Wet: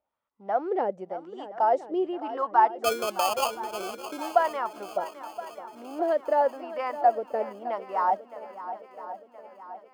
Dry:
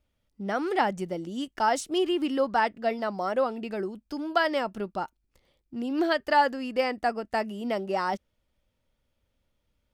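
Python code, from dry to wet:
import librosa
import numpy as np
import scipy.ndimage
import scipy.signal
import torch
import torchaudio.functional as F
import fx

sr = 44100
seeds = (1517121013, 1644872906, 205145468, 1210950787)

y = fx.wah_lfo(x, sr, hz=0.92, low_hz=480.0, high_hz=1100.0, q=3.6)
y = fx.sample_hold(y, sr, seeds[0], rate_hz=1900.0, jitter_pct=0, at=(2.84, 4.35))
y = fx.echo_swing(y, sr, ms=1021, ratio=1.5, feedback_pct=50, wet_db=-13.5)
y = y * 10.0 ** (7.5 / 20.0)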